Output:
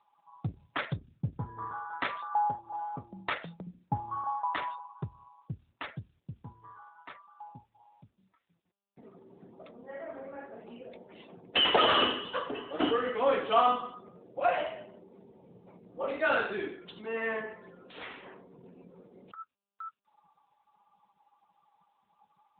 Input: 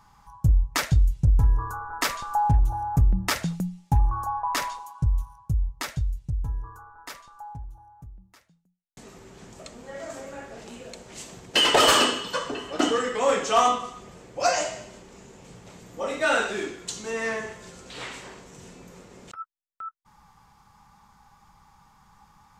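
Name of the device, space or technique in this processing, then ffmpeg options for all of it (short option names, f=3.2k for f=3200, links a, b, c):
mobile call with aggressive noise cancelling: -filter_complex "[0:a]asettb=1/sr,asplit=3[a][b][c];[a]atrim=end=2.144[d];[b]atrim=start=2.14:end=3.67,asetpts=PTS-STARTPTS,afade=t=in:d=0.004:c=qsin,afade=t=out:st=1.526:d=0.004:c=qsin,bass=f=250:g=-14,treble=f=4k:g=2[e];[c]atrim=start=3.666[f];[d][e]acrossfade=d=0.004:c1=hsin:c2=qsin[g];[g][f]acrossfade=d=0.004:c1=qsin:c2=hsin,highpass=170,afftdn=nr=22:nf=-47,volume=-3.5dB" -ar 8000 -c:a libopencore_amrnb -b:a 10200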